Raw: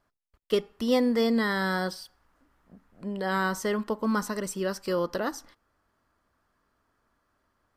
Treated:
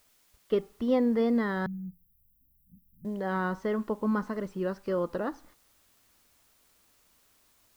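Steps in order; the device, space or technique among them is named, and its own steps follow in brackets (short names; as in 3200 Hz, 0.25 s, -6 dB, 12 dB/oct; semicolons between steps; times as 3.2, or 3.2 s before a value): cassette deck with a dirty head (tape spacing loss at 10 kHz 36 dB; wow and flutter; white noise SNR 34 dB); 1.66–3.05 inverse Chebyshev band-stop 460–6500 Hz, stop band 50 dB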